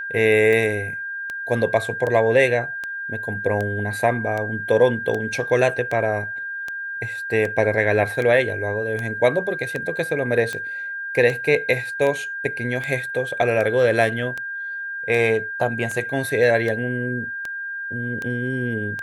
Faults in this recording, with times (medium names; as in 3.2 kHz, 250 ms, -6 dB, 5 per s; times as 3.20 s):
tick 78 rpm -15 dBFS
whine 1.6 kHz -27 dBFS